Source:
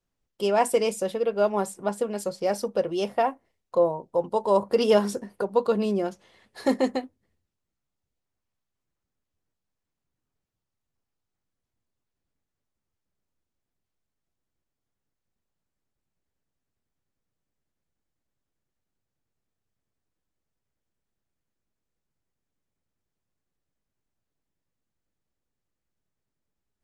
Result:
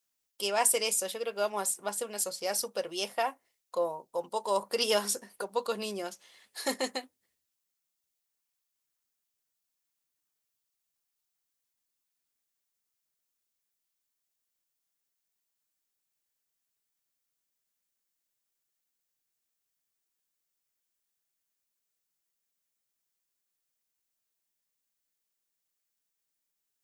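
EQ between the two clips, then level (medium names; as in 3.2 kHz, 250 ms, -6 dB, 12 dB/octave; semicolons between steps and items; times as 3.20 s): tilt EQ +4.5 dB/octave; -5.0 dB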